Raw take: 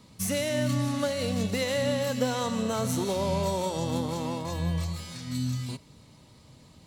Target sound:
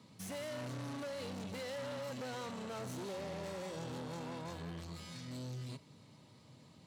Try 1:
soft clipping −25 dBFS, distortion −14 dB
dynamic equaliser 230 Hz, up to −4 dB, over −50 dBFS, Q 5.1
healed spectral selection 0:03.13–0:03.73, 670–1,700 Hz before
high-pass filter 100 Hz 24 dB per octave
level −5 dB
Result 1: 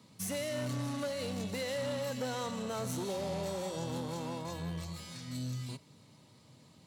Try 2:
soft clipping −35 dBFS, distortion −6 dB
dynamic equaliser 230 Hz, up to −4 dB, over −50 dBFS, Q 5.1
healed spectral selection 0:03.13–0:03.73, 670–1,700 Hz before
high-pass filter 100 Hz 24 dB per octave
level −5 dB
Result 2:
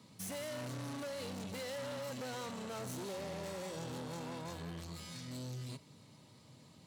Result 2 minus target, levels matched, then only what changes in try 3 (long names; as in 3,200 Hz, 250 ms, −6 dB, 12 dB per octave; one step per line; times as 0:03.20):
8,000 Hz band +3.5 dB
add after high-pass filter: high-shelf EQ 7,400 Hz −8 dB